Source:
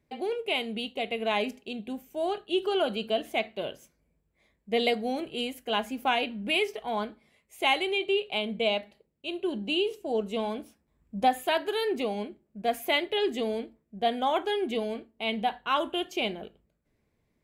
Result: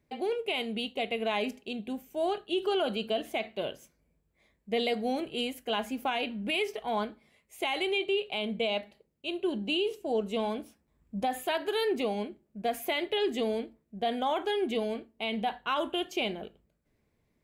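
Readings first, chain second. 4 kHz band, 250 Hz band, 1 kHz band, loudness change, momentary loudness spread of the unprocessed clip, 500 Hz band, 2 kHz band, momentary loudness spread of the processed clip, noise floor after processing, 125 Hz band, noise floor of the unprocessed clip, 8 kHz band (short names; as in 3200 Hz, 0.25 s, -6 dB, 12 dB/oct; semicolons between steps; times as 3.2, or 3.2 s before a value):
-2.5 dB, -1.0 dB, -3.5 dB, -2.5 dB, 10 LU, -1.5 dB, -3.5 dB, 8 LU, -75 dBFS, n/a, -75 dBFS, -0.5 dB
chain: limiter -20.5 dBFS, peak gain reduction 9 dB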